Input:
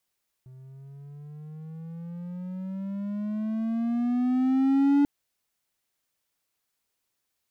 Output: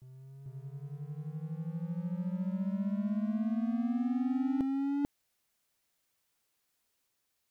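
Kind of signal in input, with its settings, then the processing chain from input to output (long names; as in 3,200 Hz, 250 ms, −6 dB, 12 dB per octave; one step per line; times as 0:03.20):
pitch glide with a swell triangle, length 4.59 s, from 128 Hz, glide +14 semitones, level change +27.5 dB, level −15 dB
reversed playback
downward compressor 6 to 1, threshold −31 dBFS
reversed playback
backwards echo 442 ms −4.5 dB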